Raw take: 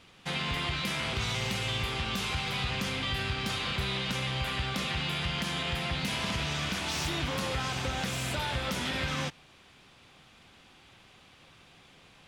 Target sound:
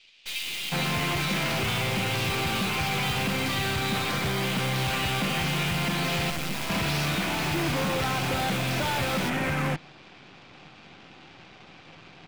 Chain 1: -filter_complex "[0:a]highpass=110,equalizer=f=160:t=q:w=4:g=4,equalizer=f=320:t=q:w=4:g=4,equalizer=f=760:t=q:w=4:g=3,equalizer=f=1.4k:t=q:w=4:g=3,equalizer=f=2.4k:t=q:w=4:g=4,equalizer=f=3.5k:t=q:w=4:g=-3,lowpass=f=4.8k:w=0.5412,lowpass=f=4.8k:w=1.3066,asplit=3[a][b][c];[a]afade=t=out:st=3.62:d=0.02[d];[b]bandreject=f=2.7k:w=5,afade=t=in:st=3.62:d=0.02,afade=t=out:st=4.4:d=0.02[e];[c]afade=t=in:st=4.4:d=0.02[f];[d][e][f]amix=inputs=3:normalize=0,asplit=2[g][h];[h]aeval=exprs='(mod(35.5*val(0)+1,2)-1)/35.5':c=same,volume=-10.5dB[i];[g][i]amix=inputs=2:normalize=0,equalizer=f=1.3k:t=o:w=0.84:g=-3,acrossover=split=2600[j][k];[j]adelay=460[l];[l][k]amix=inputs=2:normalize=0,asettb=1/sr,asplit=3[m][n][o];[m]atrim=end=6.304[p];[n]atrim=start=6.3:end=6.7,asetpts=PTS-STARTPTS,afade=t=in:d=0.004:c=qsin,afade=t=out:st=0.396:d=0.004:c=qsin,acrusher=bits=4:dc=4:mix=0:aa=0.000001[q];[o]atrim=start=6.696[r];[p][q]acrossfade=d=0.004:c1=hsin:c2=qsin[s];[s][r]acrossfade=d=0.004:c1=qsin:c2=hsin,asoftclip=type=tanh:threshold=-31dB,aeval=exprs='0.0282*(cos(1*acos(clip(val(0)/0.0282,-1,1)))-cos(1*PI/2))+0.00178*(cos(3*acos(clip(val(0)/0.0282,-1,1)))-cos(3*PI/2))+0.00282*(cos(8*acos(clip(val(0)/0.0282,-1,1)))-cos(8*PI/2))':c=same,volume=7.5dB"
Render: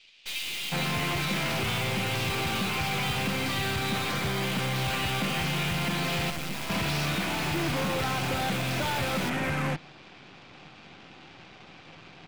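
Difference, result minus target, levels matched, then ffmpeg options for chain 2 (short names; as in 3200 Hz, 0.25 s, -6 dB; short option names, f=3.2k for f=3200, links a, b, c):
soft clip: distortion +16 dB
-filter_complex "[0:a]highpass=110,equalizer=f=160:t=q:w=4:g=4,equalizer=f=320:t=q:w=4:g=4,equalizer=f=760:t=q:w=4:g=3,equalizer=f=1.4k:t=q:w=4:g=3,equalizer=f=2.4k:t=q:w=4:g=4,equalizer=f=3.5k:t=q:w=4:g=-3,lowpass=f=4.8k:w=0.5412,lowpass=f=4.8k:w=1.3066,asplit=3[a][b][c];[a]afade=t=out:st=3.62:d=0.02[d];[b]bandreject=f=2.7k:w=5,afade=t=in:st=3.62:d=0.02,afade=t=out:st=4.4:d=0.02[e];[c]afade=t=in:st=4.4:d=0.02[f];[d][e][f]amix=inputs=3:normalize=0,asplit=2[g][h];[h]aeval=exprs='(mod(35.5*val(0)+1,2)-1)/35.5':c=same,volume=-10.5dB[i];[g][i]amix=inputs=2:normalize=0,equalizer=f=1.3k:t=o:w=0.84:g=-3,acrossover=split=2600[j][k];[j]adelay=460[l];[l][k]amix=inputs=2:normalize=0,asettb=1/sr,asplit=3[m][n][o];[m]atrim=end=6.304[p];[n]atrim=start=6.3:end=6.7,asetpts=PTS-STARTPTS,afade=t=in:d=0.004:c=qsin,afade=t=out:st=0.396:d=0.004:c=qsin,acrusher=bits=4:dc=4:mix=0:aa=0.000001[q];[o]atrim=start=6.696[r];[p][q]acrossfade=d=0.004:c1=hsin:c2=qsin[s];[s][r]acrossfade=d=0.004:c1=qsin:c2=hsin,asoftclip=type=tanh:threshold=-20dB,aeval=exprs='0.0282*(cos(1*acos(clip(val(0)/0.0282,-1,1)))-cos(1*PI/2))+0.00178*(cos(3*acos(clip(val(0)/0.0282,-1,1)))-cos(3*PI/2))+0.00282*(cos(8*acos(clip(val(0)/0.0282,-1,1)))-cos(8*PI/2))':c=same,volume=7.5dB"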